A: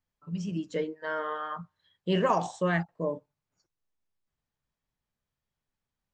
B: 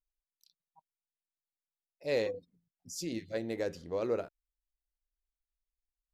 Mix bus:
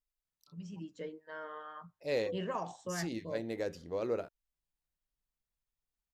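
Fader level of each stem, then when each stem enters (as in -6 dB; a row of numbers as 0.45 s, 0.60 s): -12.0 dB, -2.0 dB; 0.25 s, 0.00 s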